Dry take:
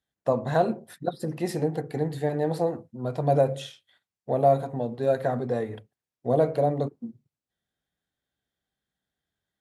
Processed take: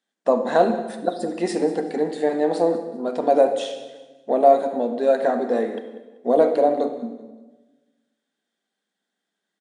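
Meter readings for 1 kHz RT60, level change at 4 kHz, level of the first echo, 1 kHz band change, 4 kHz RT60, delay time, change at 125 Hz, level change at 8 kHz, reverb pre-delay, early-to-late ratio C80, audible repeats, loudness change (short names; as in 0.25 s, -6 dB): 1.1 s, +6.0 dB, -17.5 dB, +6.5 dB, 1.1 s, 0.192 s, under -10 dB, n/a, 32 ms, 10.5 dB, 2, +5.5 dB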